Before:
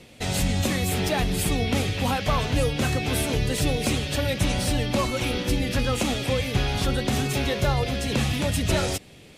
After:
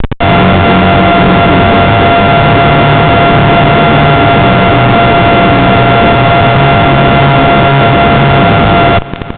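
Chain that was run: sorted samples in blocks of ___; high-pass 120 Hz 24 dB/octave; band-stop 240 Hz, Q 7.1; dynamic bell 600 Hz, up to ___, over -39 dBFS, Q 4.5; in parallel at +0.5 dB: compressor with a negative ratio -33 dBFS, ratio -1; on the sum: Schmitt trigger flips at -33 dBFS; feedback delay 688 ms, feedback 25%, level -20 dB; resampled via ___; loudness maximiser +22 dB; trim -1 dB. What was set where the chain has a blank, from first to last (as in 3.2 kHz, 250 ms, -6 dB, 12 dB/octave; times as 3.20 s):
64 samples, -3 dB, 8 kHz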